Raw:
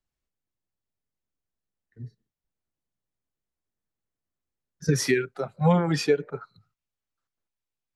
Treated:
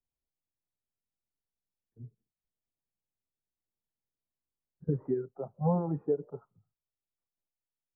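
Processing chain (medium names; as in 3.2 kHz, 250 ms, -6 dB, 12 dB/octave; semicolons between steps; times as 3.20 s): steep low-pass 1 kHz 36 dB/octave; trim -7.5 dB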